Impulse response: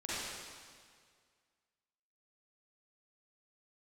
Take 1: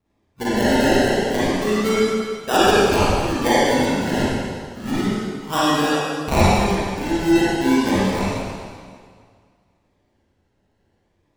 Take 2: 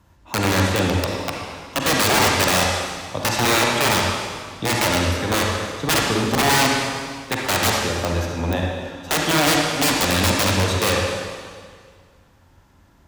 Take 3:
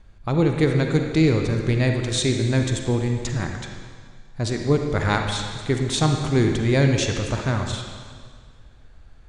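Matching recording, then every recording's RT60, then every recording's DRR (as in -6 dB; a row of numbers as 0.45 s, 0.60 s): 1; 1.9 s, 1.9 s, 1.9 s; -10.5 dB, -1.5 dB, 3.5 dB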